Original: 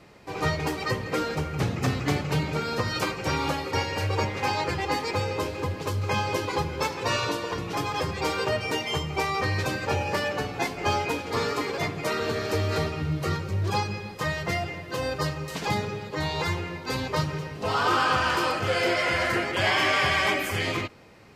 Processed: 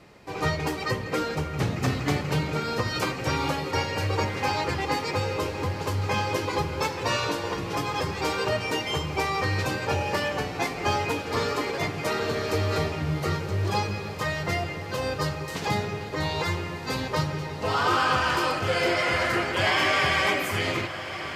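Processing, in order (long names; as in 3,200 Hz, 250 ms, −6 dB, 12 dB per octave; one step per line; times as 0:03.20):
feedback delay with all-pass diffusion 1,322 ms, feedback 58%, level −12 dB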